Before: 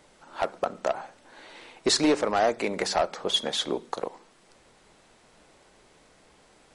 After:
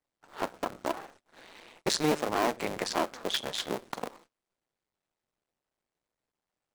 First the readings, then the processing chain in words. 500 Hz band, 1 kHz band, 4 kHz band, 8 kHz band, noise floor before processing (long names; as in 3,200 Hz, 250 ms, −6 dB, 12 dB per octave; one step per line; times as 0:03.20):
−6.0 dB, −4.0 dB, −6.0 dB, −5.0 dB, −59 dBFS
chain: sub-harmonics by changed cycles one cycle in 2, muted
noise gate −53 dBFS, range −26 dB
level −2 dB